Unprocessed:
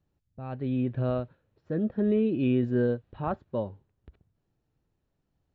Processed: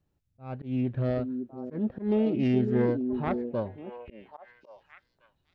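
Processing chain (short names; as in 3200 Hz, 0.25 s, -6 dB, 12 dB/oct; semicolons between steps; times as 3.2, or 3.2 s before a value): self-modulated delay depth 0.17 ms; delay with a stepping band-pass 0.554 s, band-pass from 310 Hz, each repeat 1.4 oct, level -4 dB; auto swell 0.133 s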